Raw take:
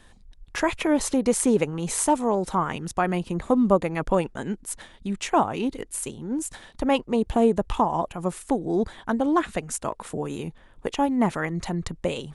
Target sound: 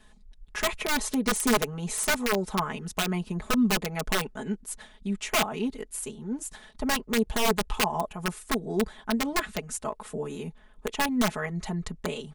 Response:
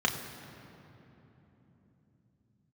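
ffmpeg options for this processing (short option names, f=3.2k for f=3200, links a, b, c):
-af "aeval=exprs='(mod(4.73*val(0)+1,2)-1)/4.73':c=same,aecho=1:1:4.7:0.93,volume=-6.5dB"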